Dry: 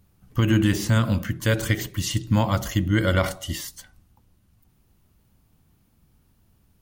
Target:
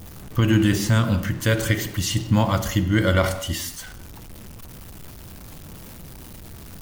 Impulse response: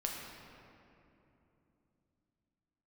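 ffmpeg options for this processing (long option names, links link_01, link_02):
-filter_complex "[0:a]aeval=exprs='val(0)+0.5*0.0158*sgn(val(0))':channel_layout=same,asplit=2[link_01][link_02];[1:a]atrim=start_sample=2205,afade=type=out:start_time=0.27:duration=0.01,atrim=end_sample=12348,asetrate=48510,aresample=44100[link_03];[link_02][link_03]afir=irnorm=-1:irlink=0,volume=-6.5dB[link_04];[link_01][link_04]amix=inputs=2:normalize=0,volume=-1.5dB"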